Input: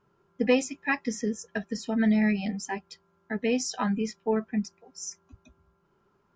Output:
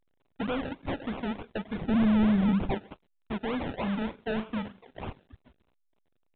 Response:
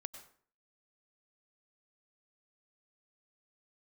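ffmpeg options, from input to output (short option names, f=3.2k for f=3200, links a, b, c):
-filter_complex "[0:a]asplit=2[a][b];[1:a]atrim=start_sample=2205,afade=t=out:st=0.24:d=0.01,atrim=end_sample=11025[c];[b][c]afir=irnorm=-1:irlink=0,volume=-3dB[d];[a][d]amix=inputs=2:normalize=0,acrusher=samples=32:mix=1:aa=0.000001:lfo=1:lforange=19.2:lforate=3.3,volume=26dB,asoftclip=hard,volume=-26dB,asettb=1/sr,asplit=3[e][f][g];[e]atrim=end=1.814[h];[f]atrim=start=1.81:end=2.75,asetpts=PTS-STARTPTS,afade=t=in:d=0.004:c=qsin,afade=t=out:st=0.936:d=0.004:c=qsin,lowshelf=f=340:g=10.5[i];[g]atrim=start=2.746[j];[h][i]acrossfade=d=0.004:c1=hsin:c2=qsin[k];[k][j]acrossfade=d=0.004:c1=qsin:c2=hsin,asettb=1/sr,asplit=3[l][m][n];[l]atrim=end=3.824[o];[m]atrim=start=3.82:end=5.03,asetpts=PTS-STARTPTS,afade=t=in:d=0.004:c=qsin,afade=t=out:st=1.206:d=0.004:c=qsin,asplit=2[p][q];[q]adelay=36,volume=-11.5dB[r];[p][r]amix=inputs=2:normalize=0,atrim=end_sample=53361[s];[n]atrim=start=5.026[t];[o][s]acrossfade=d=0.004:c1=hsin:c2=qsin[u];[u][t]acrossfade=d=0.004:c1=qsin:c2=hsin,aeval=exprs='sgn(val(0))*max(abs(val(0))-0.00112,0)':c=same,volume=-2dB" -ar 8000 -c:a pcm_alaw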